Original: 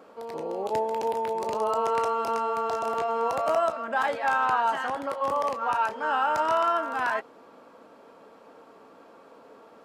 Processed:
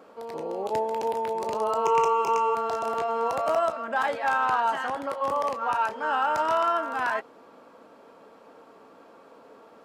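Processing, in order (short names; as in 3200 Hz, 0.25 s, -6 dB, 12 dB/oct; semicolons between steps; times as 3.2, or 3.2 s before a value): hard clip -16.5 dBFS, distortion -37 dB; 1.85–2.55 ripple EQ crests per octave 0.74, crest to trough 14 dB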